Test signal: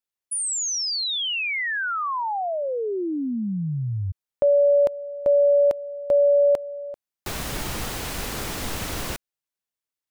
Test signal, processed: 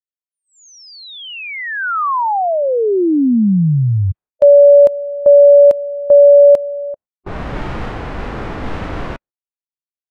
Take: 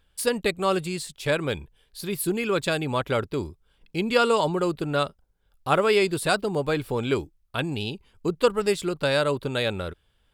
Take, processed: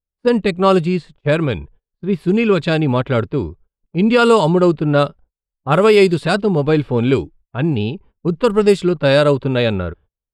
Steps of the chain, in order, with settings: dynamic bell 210 Hz, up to +4 dB, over -33 dBFS, Q 0.8; level-controlled noise filter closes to 670 Hz, open at -15 dBFS; gate -50 dBFS, range -32 dB; harmonic-percussive split harmonic +7 dB; loudness maximiser +4.5 dB; trim -1 dB

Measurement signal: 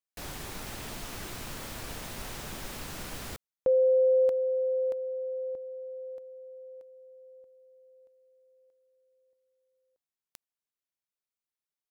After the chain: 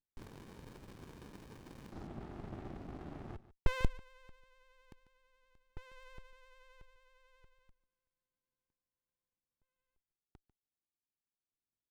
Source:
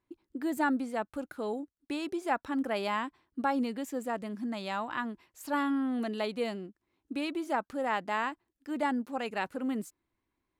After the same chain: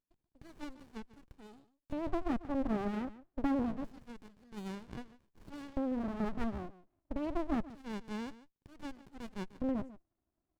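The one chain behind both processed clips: treble shelf 4.5 kHz -6 dB; LFO band-pass square 0.26 Hz 390–5100 Hz; vibrato 11 Hz 34 cents; on a send: delay 145 ms -16.5 dB; on the sum: sliding maximum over 65 samples; trim +7.5 dB

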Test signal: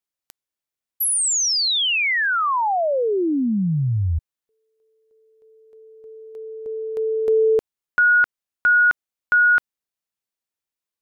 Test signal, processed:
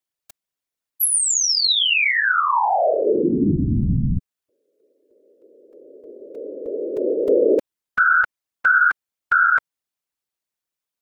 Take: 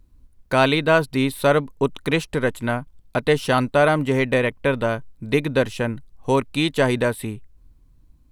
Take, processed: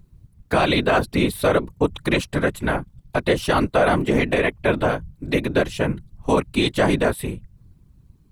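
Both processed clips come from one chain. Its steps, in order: whisper effect; loudness maximiser +8.5 dB; trim -7 dB

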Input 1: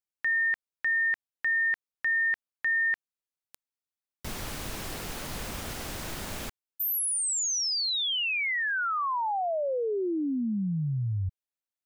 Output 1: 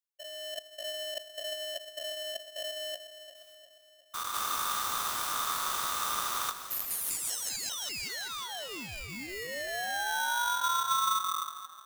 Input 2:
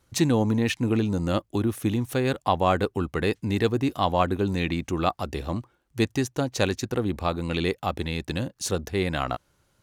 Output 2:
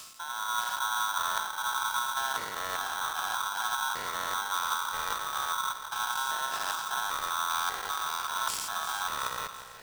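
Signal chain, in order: spectrogram pixelated in time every 200 ms; reverse; compression 6:1, threshold -36 dBFS; reverse; peaking EQ 1.1 kHz -13 dB 2.6 oct; hum notches 50/100/150/200 Hz; spring tank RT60 2.6 s, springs 36 ms, chirp 65 ms, DRR 17 dB; level rider gain up to 7 dB; two-band feedback delay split 420 Hz, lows 165 ms, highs 354 ms, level -10.5 dB; polarity switched at an audio rate 1.2 kHz; trim +2.5 dB

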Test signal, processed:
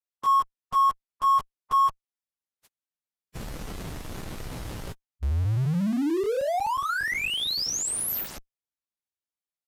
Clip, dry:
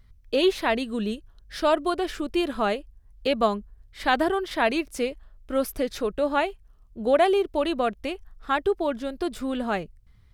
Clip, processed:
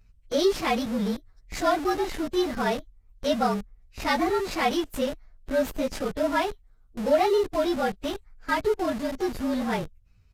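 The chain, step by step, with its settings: frequency axis rescaled in octaves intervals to 110%; in parallel at -7.5 dB: Schmitt trigger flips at -38.5 dBFS; on the sum: resampled via 32 kHz

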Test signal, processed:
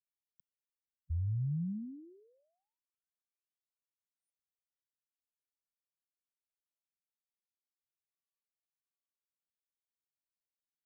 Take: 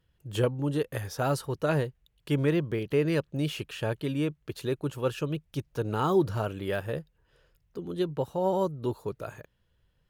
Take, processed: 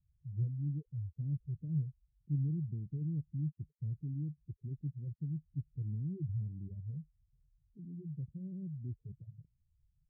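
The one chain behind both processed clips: spectral gate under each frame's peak -10 dB strong; inverse Chebyshev band-stop 1–8.1 kHz, stop band 80 dB; trim -3 dB

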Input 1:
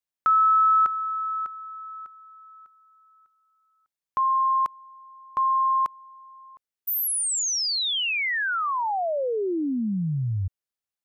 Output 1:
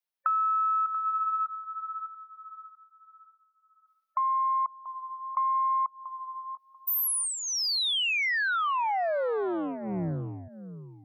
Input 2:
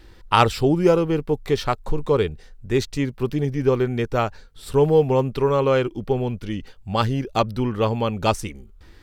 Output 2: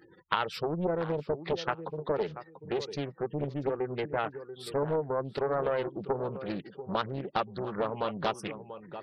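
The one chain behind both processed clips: compression 12:1, threshold -24 dBFS; peaking EQ 7.2 kHz -9 dB 0.4 oct; spectral gate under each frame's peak -25 dB strong; Chebyshev high-pass 160 Hz, order 3; peaking EQ 240 Hz -14.5 dB 0.26 oct; tape echo 688 ms, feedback 23%, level -11 dB, low-pass 1.5 kHz; loudspeaker Doppler distortion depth 0.74 ms

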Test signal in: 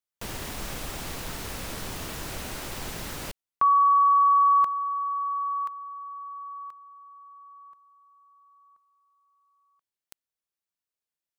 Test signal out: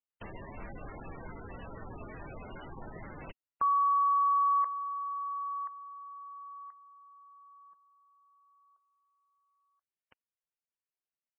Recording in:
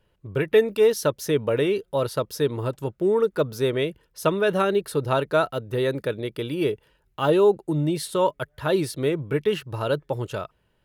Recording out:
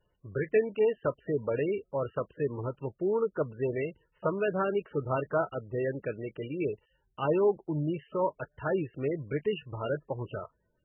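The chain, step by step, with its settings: trim -7 dB; MP3 8 kbps 22.05 kHz

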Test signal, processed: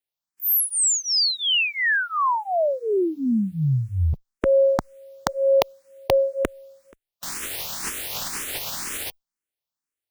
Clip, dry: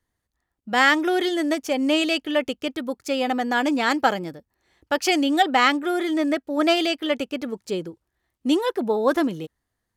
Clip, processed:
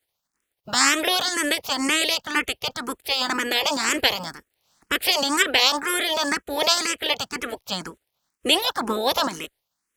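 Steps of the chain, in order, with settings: spectral peaks clipped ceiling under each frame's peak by 28 dB; barber-pole phaser +2 Hz; trim +2.5 dB

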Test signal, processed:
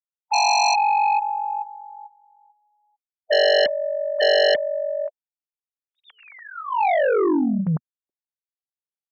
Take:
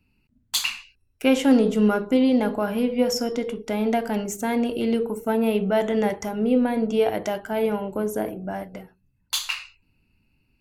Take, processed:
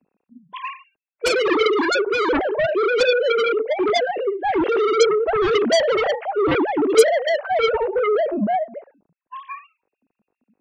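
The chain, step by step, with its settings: formants replaced by sine waves; level-controlled noise filter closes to 600 Hz, open at -17 dBFS; harmonic-percussive split percussive -11 dB; in parallel at -11.5 dB: sine folder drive 20 dB, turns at -7 dBFS

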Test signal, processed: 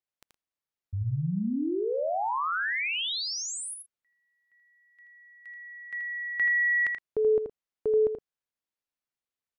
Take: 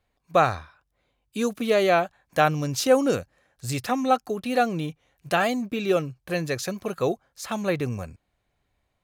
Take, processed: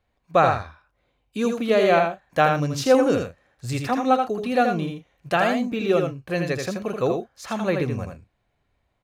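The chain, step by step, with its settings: treble shelf 6.2 kHz -11 dB; multi-tap echo 81/117 ms -5/-17 dB; trim +1.5 dB

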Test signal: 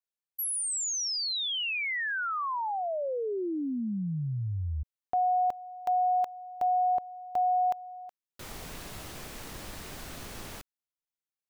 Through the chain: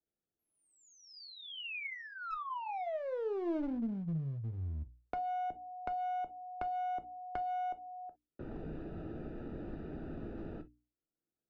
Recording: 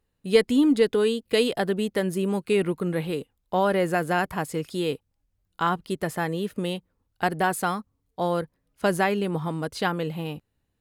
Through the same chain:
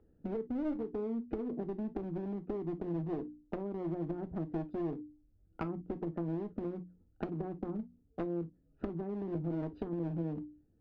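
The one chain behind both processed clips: local Wiener filter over 41 samples; low-pass that closes with the level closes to 330 Hz, closed at -24 dBFS; hum notches 60/120/180/240/300 Hz; level-controlled noise filter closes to 2 kHz, open at -28.5 dBFS; dynamic bell 310 Hz, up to +4 dB, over -40 dBFS, Q 1.3; compression 20:1, threshold -35 dBFS; small resonant body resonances 310/1300 Hz, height 10 dB, ringing for 50 ms; one-sided clip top -36.5 dBFS; distance through air 120 m; gated-style reverb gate 80 ms falling, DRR 8 dB; three bands compressed up and down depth 40%

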